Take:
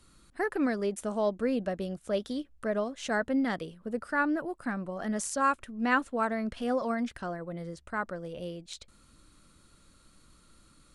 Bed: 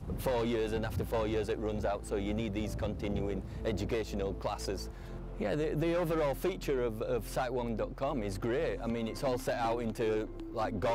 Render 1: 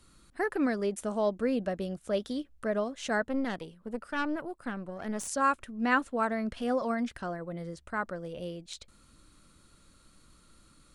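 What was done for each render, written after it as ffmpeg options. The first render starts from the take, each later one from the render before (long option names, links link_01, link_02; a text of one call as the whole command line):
ffmpeg -i in.wav -filter_complex "[0:a]asettb=1/sr,asplit=3[link_01][link_02][link_03];[link_01]atrim=end=3.224[link_04];[link_02]atrim=start=3.22:end=5.28,asetpts=PTS-STARTPTS,afade=type=in:duration=0.004:curve=qsin,afade=type=out:start_time=2.056:duration=0.004:curve=qsin,aeval=exprs='(tanh(15.8*val(0)+0.7)-tanh(0.7))/15.8':channel_layout=same[link_05];[link_03]atrim=start=5.276[link_06];[link_04][link_05]acrossfade=duration=0.004:curve1=hsin:curve2=qsin[link_07];[link_07][link_06]acrossfade=duration=0.004:curve1=qsin:curve2=hsin" out.wav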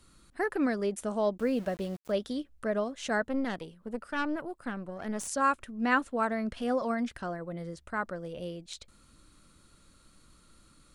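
ffmpeg -i in.wav -filter_complex "[0:a]asettb=1/sr,asplit=3[link_01][link_02][link_03];[link_01]atrim=end=1.384[link_04];[link_02]atrim=start=1.38:end=2.12,asetpts=PTS-STARTPTS,afade=type=in:duration=0.004:curve=qsin,afade=type=out:start_time=0.736:duration=0.004:curve=qsin,aeval=exprs='val(0)*gte(abs(val(0)),0.00531)':channel_layout=same[link_05];[link_03]atrim=start=2.116[link_06];[link_04][link_05]acrossfade=duration=0.004:curve1=hsin:curve2=qsin[link_07];[link_07][link_06]acrossfade=duration=0.004:curve1=qsin:curve2=hsin" out.wav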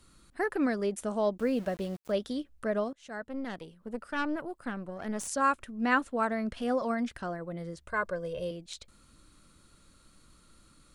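ffmpeg -i in.wav -filter_complex "[0:a]asettb=1/sr,asplit=3[link_01][link_02][link_03];[link_01]atrim=end=7.884[link_04];[link_02]atrim=start=7.88:end=8.51,asetpts=PTS-STARTPTS,afade=type=in:duration=0.004:curve=qsin,afade=type=out:start_time=0.626:duration=0.004:curve=qsin,aecho=1:1:1.9:0.85,atrim=end_sample=27783[link_05];[link_03]atrim=start=8.506[link_06];[link_04][link_05]acrossfade=duration=0.004:curve1=hsin:curve2=qsin[link_07];[link_07][link_06]acrossfade=duration=0.004:curve1=qsin:curve2=hsin,asplit=2[link_08][link_09];[link_08]atrim=end=2.93,asetpts=PTS-STARTPTS,afade=type=out:start_time=2.926:duration=0.004:curve=hsin:silence=0.0668344[link_10];[link_09]atrim=start=2.93,asetpts=PTS-STARTPTS,afade=type=in:duration=1.45:curve=qsin:silence=0.0668344[link_11];[link_10][link_11]concat=n=2:v=0:a=1" out.wav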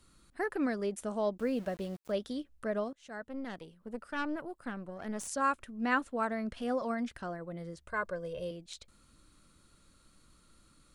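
ffmpeg -i in.wav -af "volume=-3.5dB" out.wav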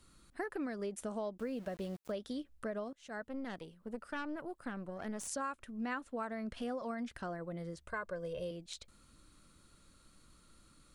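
ffmpeg -i in.wav -af "acompressor=threshold=-36dB:ratio=6" out.wav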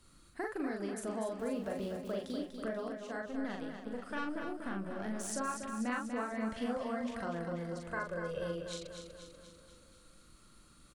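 ffmpeg -i in.wav -filter_complex "[0:a]asplit=2[link_01][link_02];[link_02]adelay=41,volume=-3dB[link_03];[link_01][link_03]amix=inputs=2:normalize=0,aecho=1:1:243|486|729|972|1215|1458|1701:0.447|0.259|0.15|0.0872|0.0505|0.0293|0.017" out.wav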